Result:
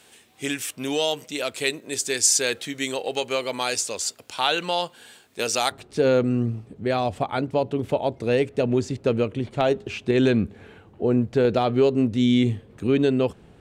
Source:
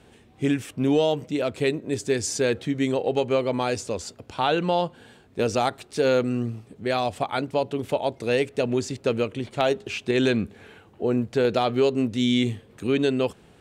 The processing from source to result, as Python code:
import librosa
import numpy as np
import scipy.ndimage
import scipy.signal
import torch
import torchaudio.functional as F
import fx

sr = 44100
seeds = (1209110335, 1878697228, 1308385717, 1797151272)

y = fx.tilt_eq(x, sr, slope=fx.steps((0.0, 4.0), (5.71, -1.5)))